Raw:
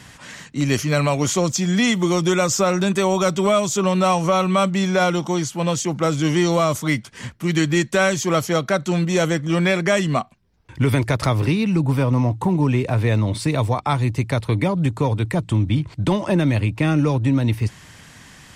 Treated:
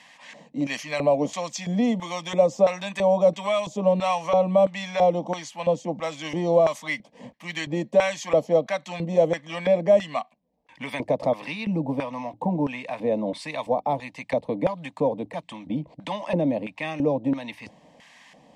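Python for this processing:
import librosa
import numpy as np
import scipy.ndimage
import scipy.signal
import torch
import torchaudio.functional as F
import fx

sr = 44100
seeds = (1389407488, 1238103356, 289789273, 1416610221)

y = fx.fixed_phaser(x, sr, hz=380.0, stages=6)
y = fx.filter_lfo_bandpass(y, sr, shape='square', hz=1.5, low_hz=480.0, high_hz=1600.0, q=1.6)
y = y * librosa.db_to_amplitude(6.0)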